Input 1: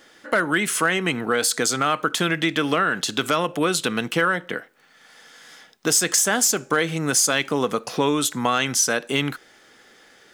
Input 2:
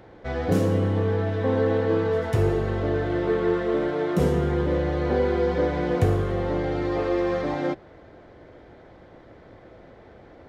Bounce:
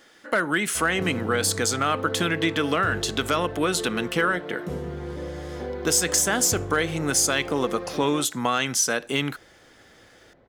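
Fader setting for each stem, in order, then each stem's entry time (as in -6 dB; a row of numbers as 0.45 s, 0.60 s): -2.5 dB, -10.0 dB; 0.00 s, 0.50 s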